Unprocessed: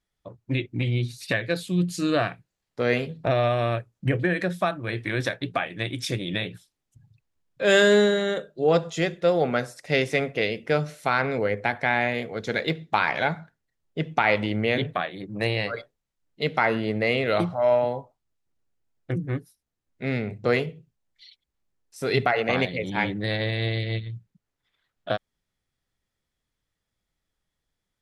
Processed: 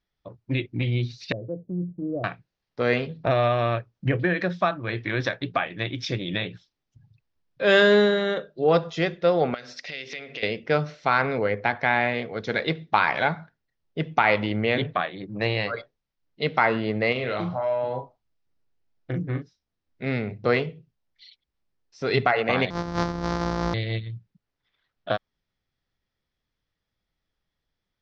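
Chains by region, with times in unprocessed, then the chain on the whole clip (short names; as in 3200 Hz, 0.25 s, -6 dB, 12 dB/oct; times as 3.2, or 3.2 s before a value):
1.32–2.24 steep low-pass 610 Hz + compressor 1.5:1, threshold -35 dBFS
9.54–10.43 notches 50/100/150/200/250/300/350/400/450 Hz + compressor 16:1, threshold -36 dBFS + weighting filter D
17.12–20.06 compressor, threshold -24 dBFS + doubler 39 ms -6 dB
22.7–23.74 sample sorter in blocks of 256 samples + bell 2700 Hz -11.5 dB 0.85 oct
whole clip: steep low-pass 5800 Hz 48 dB/oct; dynamic EQ 1100 Hz, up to +4 dB, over -40 dBFS, Q 1.8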